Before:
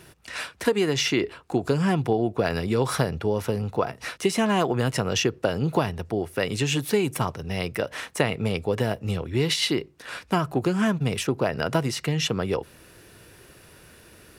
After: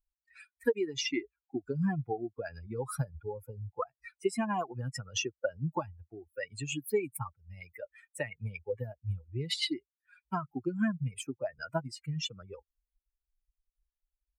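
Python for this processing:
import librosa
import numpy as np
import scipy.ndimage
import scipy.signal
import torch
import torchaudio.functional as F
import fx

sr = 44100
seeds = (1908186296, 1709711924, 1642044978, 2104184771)

y = fx.bin_expand(x, sr, power=3.0)
y = y * 10.0 ** (-2.5 / 20.0)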